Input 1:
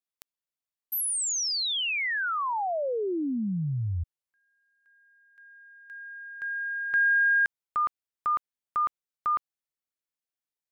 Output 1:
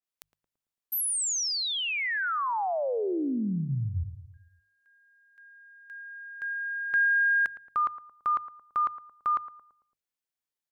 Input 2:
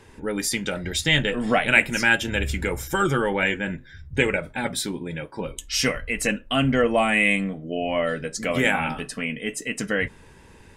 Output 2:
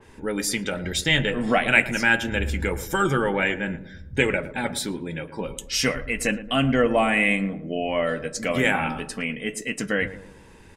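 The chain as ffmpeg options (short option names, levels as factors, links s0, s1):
-filter_complex "[0:a]bandreject=f=50:t=h:w=6,bandreject=f=100:t=h:w=6,bandreject=f=150:t=h:w=6,asplit=2[s0][s1];[s1]adelay=112,lowpass=f=1000:p=1,volume=0.251,asplit=2[s2][s3];[s3]adelay=112,lowpass=f=1000:p=1,volume=0.52,asplit=2[s4][s5];[s5]adelay=112,lowpass=f=1000:p=1,volume=0.52,asplit=2[s6][s7];[s7]adelay=112,lowpass=f=1000:p=1,volume=0.52,asplit=2[s8][s9];[s9]adelay=112,lowpass=f=1000:p=1,volume=0.52[s10];[s2][s4][s6][s8][s10]amix=inputs=5:normalize=0[s11];[s0][s11]amix=inputs=2:normalize=0,adynamicequalizer=threshold=0.02:dfrequency=2700:dqfactor=0.7:tfrequency=2700:tqfactor=0.7:attack=5:release=100:ratio=0.375:range=2.5:mode=cutabove:tftype=highshelf"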